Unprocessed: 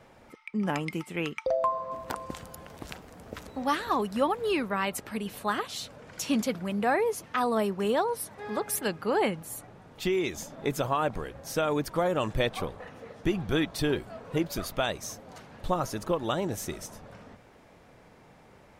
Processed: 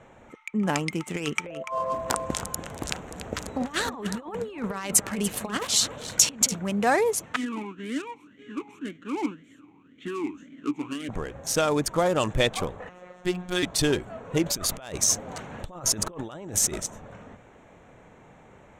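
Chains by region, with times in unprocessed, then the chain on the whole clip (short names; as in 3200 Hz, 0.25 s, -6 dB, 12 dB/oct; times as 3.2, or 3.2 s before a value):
1.06–6.55 negative-ratio compressor -33 dBFS, ratio -0.5 + echo 0.29 s -11 dB
7.36–11.09 half-waves squared off + vowel sweep i-u 1.9 Hz
12.89–13.63 low shelf 190 Hz -9 dB + robotiser 180 Hz
14.43–16.8 negative-ratio compressor -39 dBFS + mismatched tape noise reduction encoder only
whole clip: Wiener smoothing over 9 samples; bell 7300 Hz +13.5 dB 1.4 oct; gain +3.5 dB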